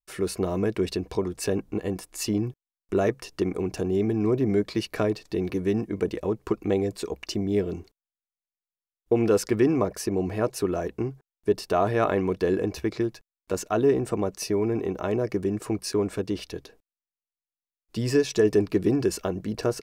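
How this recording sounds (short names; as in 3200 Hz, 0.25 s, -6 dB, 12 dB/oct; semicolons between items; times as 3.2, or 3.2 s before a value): noise floor -96 dBFS; spectral tilt -6.5 dB/oct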